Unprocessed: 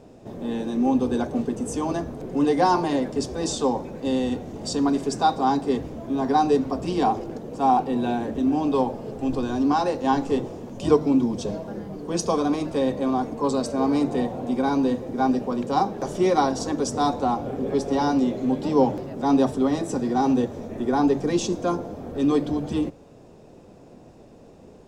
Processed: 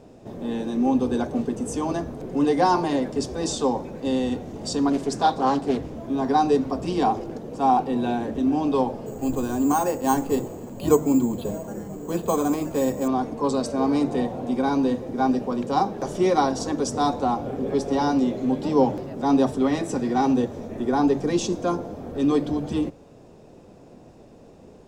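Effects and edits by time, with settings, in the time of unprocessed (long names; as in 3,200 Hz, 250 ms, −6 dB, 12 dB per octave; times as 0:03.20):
0:04.90–0:05.95: highs frequency-modulated by the lows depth 0.27 ms
0:09.06–0:13.08: bad sample-rate conversion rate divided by 6×, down filtered, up hold
0:19.57–0:20.26: dynamic equaliser 2,200 Hz, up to +7 dB, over −45 dBFS, Q 1.5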